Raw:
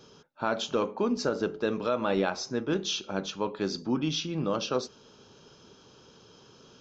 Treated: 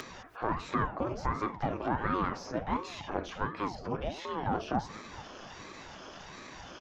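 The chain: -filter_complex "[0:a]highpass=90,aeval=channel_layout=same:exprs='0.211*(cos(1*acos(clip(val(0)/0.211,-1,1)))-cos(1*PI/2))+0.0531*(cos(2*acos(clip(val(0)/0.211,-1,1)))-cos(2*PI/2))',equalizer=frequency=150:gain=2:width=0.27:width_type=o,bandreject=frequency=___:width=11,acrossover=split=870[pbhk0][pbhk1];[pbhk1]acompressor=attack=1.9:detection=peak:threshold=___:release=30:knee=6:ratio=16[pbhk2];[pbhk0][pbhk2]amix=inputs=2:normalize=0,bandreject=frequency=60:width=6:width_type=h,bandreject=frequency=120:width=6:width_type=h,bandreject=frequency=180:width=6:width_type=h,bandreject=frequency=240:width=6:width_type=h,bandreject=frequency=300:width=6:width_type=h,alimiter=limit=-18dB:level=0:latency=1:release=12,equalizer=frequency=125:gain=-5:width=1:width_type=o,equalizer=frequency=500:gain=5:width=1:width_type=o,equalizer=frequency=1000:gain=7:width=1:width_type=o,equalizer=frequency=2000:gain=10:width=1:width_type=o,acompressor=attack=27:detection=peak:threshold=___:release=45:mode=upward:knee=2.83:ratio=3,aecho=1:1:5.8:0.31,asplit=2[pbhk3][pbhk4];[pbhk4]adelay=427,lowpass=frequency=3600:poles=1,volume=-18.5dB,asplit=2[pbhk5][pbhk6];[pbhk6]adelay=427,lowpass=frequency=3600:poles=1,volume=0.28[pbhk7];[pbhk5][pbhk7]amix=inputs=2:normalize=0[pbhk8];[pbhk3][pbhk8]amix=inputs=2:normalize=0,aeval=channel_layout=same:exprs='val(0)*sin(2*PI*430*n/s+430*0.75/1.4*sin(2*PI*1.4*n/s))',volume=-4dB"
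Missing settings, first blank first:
3800, -44dB, -36dB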